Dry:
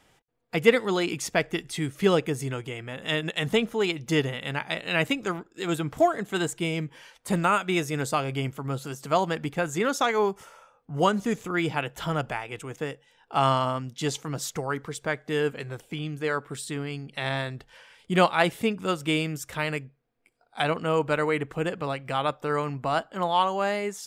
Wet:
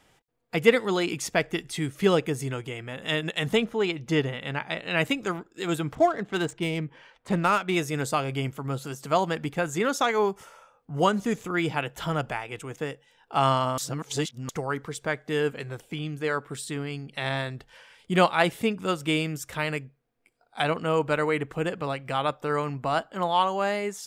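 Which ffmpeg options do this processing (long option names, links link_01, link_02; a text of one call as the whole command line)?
ffmpeg -i in.wav -filter_complex "[0:a]asettb=1/sr,asplit=3[link_01][link_02][link_03];[link_01]atrim=end=3.644[link_04];[link_02]atrim=start=3.64:end=4.97,asetpts=PTS-STARTPTS,afade=type=in:duration=0.004:curve=qsin,afade=type=out:start_time=1.326:duration=0.004:curve=qsin,lowpass=frequency=3700:poles=1[link_05];[link_03]atrim=start=4.966[link_06];[link_04][link_05]acrossfade=duration=0.004:curve1=hsin:curve2=qsin[link_07];[link_07][link_06]acrossfade=duration=0.004:curve1=qsin:curve2=hsin,asettb=1/sr,asplit=3[link_08][link_09][link_10];[link_08]atrim=end=5.954[link_11];[link_09]atrim=start=5.95:end=7.76,asetpts=PTS-STARTPTS,afade=type=in:duration=0.004:curve=qsin,afade=type=out:start_time=1.806:duration=0.004:curve=qsin,adynamicsmooth=sensitivity=5.5:basefreq=2900[link_12];[link_10]atrim=start=7.756[link_13];[link_11][link_12]acrossfade=duration=0.004:curve1=hsin:curve2=qsin[link_14];[link_14][link_13]acrossfade=duration=0.004:curve1=qsin:curve2=hsin,asplit=3[link_15][link_16][link_17];[link_15]atrim=end=13.782[link_18];[link_16]atrim=start=13.778:end=14.492,asetpts=PTS-STARTPTS,areverse[link_19];[link_17]atrim=start=14.488[link_20];[link_18][link_19]acrossfade=duration=0.004:curve1=hsin:curve2=hsin[link_21];[link_21][link_20]acrossfade=duration=0.004:curve1=hsin:curve2=hsin" out.wav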